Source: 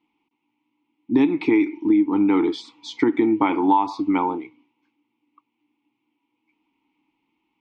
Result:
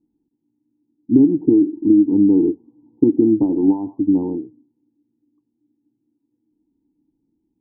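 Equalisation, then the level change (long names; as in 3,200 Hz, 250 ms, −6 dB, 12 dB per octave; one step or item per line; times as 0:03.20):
Gaussian smoothing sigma 18 samples
spectral tilt −2 dB per octave
+4.0 dB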